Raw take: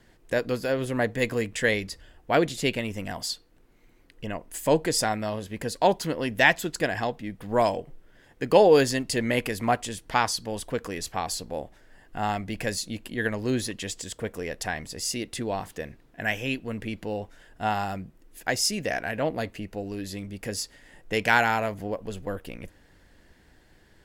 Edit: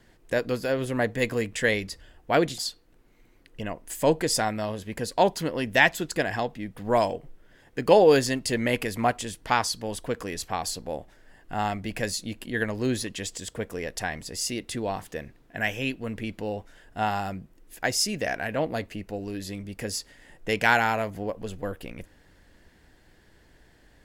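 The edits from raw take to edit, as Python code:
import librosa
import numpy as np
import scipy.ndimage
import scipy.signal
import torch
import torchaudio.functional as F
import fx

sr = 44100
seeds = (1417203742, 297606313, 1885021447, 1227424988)

y = fx.edit(x, sr, fx.cut(start_s=2.58, length_s=0.64), tone=tone)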